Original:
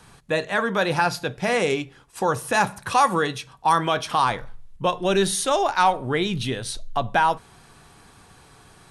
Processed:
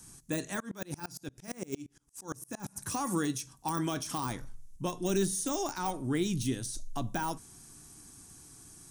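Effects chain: de-esser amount 80%; EQ curve 200 Hz 0 dB, 300 Hz +6 dB, 470 Hz -10 dB, 2700 Hz -7 dB, 4100 Hz -4 dB, 6000 Hz +12 dB; 0.6–2.76 dB-ramp tremolo swelling 8.7 Hz, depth 29 dB; gain -5.5 dB

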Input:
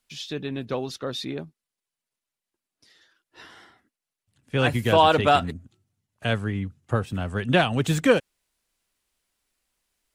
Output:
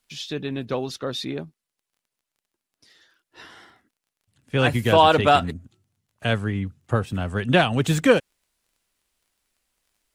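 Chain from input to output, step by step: crackle 21/s -55 dBFS; gain +2 dB

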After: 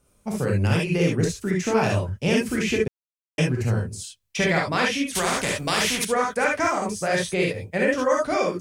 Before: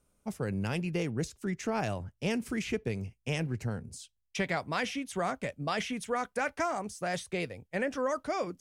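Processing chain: non-linear reverb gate 90 ms rising, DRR -2 dB; 2.88–3.38 mute; 5.15–6.05 spectral compressor 2:1; gain +6.5 dB

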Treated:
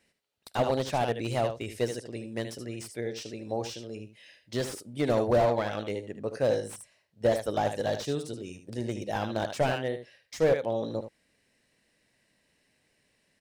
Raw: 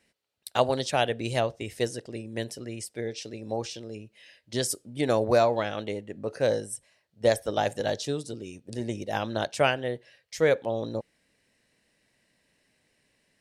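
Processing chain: echo 76 ms -10 dB; slew limiter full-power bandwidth 74 Hz; gain -1 dB

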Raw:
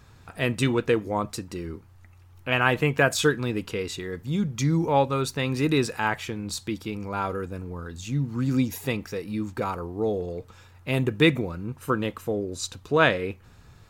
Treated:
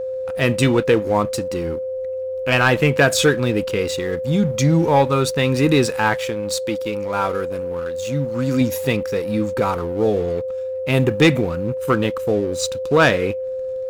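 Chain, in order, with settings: 6.17–8.61 low shelf 290 Hz -6.5 dB; sample leveller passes 2; whine 520 Hz -23 dBFS

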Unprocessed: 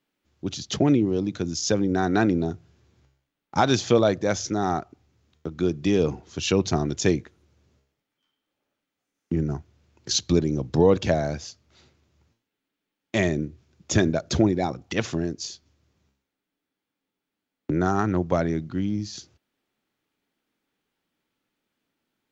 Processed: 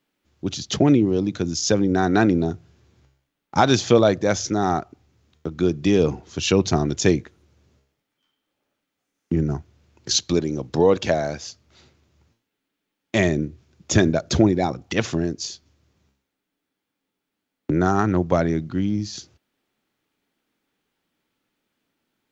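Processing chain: 10.16–11.46 low shelf 220 Hz -9.5 dB; gain +3.5 dB

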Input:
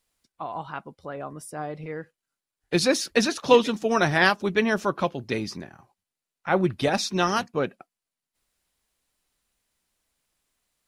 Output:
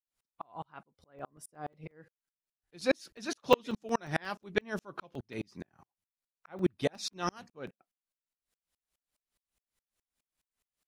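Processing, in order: crackling interface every 0.18 s, samples 128, zero, from 0.65; dB-ramp tremolo swelling 4.8 Hz, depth 39 dB; gain -2 dB

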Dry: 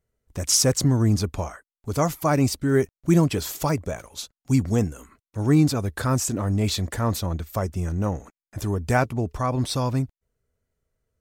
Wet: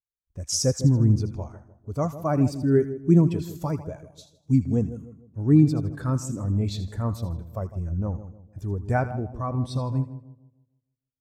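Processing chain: split-band echo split 900 Hz, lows 0.152 s, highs 80 ms, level -9 dB; spectral expander 1.5:1

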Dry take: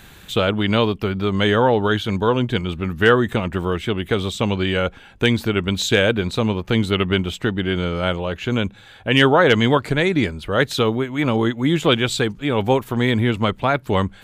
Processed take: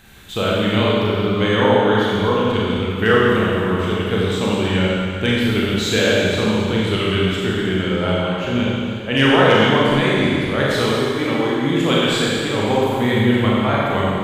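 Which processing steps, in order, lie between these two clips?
Schroeder reverb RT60 2.3 s, combs from 29 ms, DRR -6 dB; gain -5 dB

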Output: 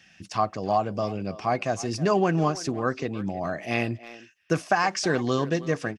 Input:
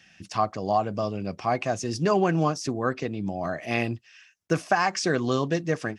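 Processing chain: speakerphone echo 0.32 s, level -15 dB

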